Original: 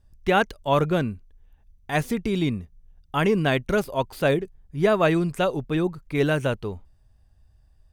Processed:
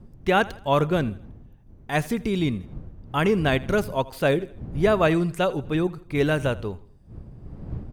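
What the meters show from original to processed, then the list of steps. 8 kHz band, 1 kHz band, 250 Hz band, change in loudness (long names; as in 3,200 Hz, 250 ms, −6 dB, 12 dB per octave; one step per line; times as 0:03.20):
0.0 dB, 0.0 dB, 0.0 dB, 0.0 dB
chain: wind on the microphone 140 Hz −39 dBFS
repeating echo 82 ms, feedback 44%, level −20.5 dB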